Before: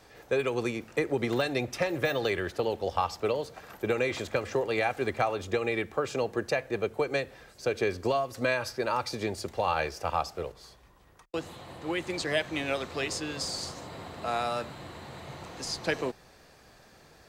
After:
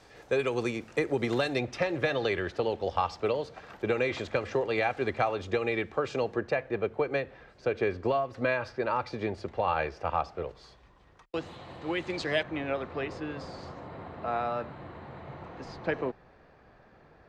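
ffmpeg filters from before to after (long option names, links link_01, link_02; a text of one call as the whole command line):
ffmpeg -i in.wav -af "asetnsamples=nb_out_samples=441:pad=0,asendcmd='1.59 lowpass f 4600;6.36 lowpass f 2600;10.49 lowpass f 4500;12.43 lowpass f 1800',lowpass=8400" out.wav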